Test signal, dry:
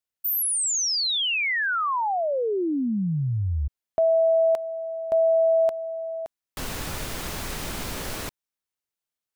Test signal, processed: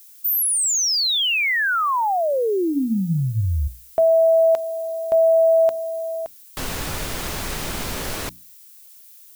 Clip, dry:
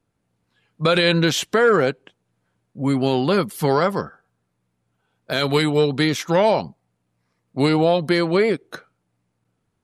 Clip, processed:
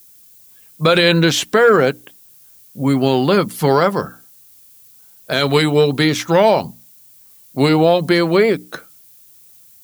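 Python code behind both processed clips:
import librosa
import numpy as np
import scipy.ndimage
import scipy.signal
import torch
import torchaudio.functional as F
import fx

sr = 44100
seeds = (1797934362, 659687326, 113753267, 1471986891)

y = fx.hum_notches(x, sr, base_hz=60, count=5)
y = fx.dmg_noise_colour(y, sr, seeds[0], colour='violet', level_db=-51.0)
y = y * 10.0 ** (4.5 / 20.0)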